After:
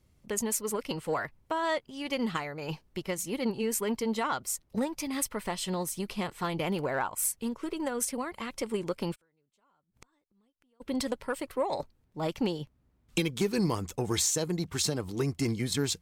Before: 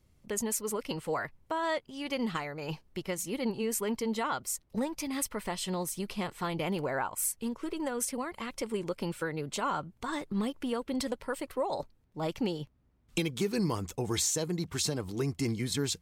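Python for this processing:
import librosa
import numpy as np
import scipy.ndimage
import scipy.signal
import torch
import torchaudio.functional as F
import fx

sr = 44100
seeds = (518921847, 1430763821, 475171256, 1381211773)

y = fx.gate_flip(x, sr, shuts_db=-35.0, range_db=-40, at=(9.14, 10.8), fade=0.02)
y = fx.cheby_harmonics(y, sr, harmonics=(2, 7), levels_db=(-30, -31), full_scale_db=-16.0)
y = F.gain(torch.from_numpy(y), 2.5).numpy()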